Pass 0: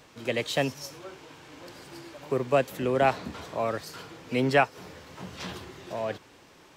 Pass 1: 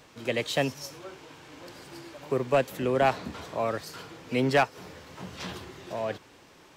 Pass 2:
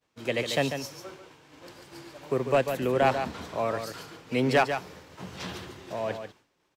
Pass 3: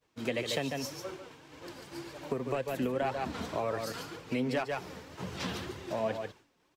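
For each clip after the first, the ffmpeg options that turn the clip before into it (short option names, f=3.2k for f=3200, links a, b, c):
-af "asoftclip=type=hard:threshold=-14.5dB"
-filter_complex "[0:a]agate=range=-33dB:threshold=-42dB:ratio=3:detection=peak,asplit=2[a][b];[b]aecho=0:1:144:0.398[c];[a][c]amix=inputs=2:normalize=0"
-af "equalizer=f=120:w=0.46:g=3.5,acompressor=threshold=-29dB:ratio=8,flanger=delay=1.7:depth=2.9:regen=48:speed=1.9:shape=triangular,volume=4.5dB"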